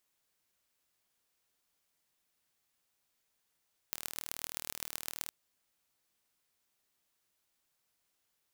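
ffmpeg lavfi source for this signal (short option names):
-f lavfi -i "aevalsrc='0.398*eq(mod(n,1131),0)*(0.5+0.5*eq(mod(n,5655),0))':d=1.38:s=44100"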